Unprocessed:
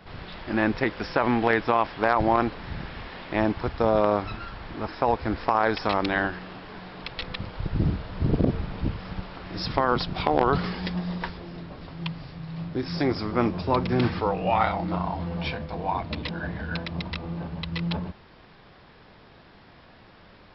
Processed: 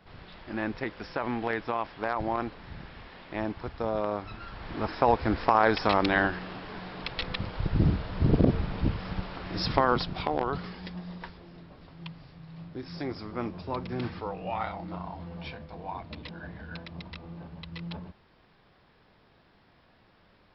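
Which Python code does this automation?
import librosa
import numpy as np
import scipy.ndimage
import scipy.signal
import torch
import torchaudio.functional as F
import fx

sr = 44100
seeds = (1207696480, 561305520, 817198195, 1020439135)

y = fx.gain(x, sr, db=fx.line((4.26, -8.5), (4.78, 0.5), (9.75, 0.5), (10.6, -10.0)))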